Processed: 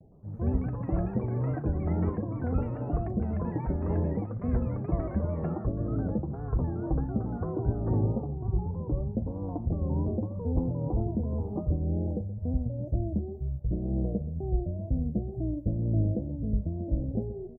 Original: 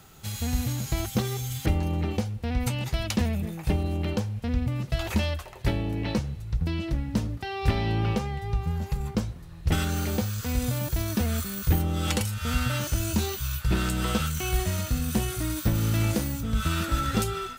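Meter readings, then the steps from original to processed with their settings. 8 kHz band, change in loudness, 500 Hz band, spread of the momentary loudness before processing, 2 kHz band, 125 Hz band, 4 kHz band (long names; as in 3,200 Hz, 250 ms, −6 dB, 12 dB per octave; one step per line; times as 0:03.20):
below −40 dB, −3.0 dB, −1.0 dB, 4 LU, below −20 dB, −2.0 dB, below −40 dB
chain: elliptic low-pass filter 650 Hz, stop band 50 dB
pitch vibrato 2.1 Hz 88 cents
single-tap delay 125 ms −14.5 dB
delay with pitch and tempo change per echo 113 ms, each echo +7 semitones, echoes 3, each echo −6 dB
amplitude tremolo 2 Hz, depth 44%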